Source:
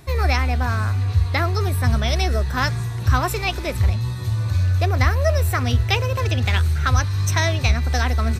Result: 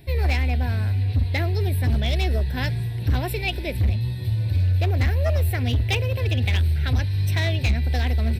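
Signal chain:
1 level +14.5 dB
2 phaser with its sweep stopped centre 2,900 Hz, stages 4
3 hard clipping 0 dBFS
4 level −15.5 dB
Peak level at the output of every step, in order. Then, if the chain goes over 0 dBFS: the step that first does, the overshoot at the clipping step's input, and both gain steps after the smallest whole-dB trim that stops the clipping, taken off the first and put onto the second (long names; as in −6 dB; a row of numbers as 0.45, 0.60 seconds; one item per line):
+10.5, +8.5, 0.0, −15.5 dBFS
step 1, 8.5 dB
step 1 +5.5 dB, step 4 −6.5 dB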